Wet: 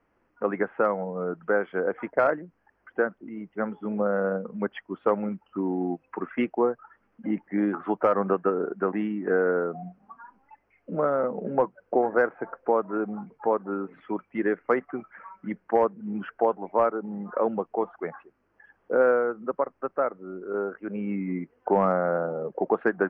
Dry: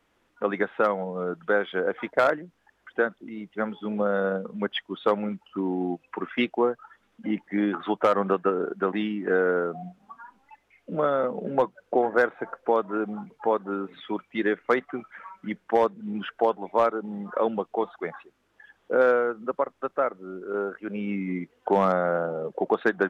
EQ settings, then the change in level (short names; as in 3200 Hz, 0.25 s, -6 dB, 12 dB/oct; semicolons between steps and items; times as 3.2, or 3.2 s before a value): running mean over 12 samples; 0.0 dB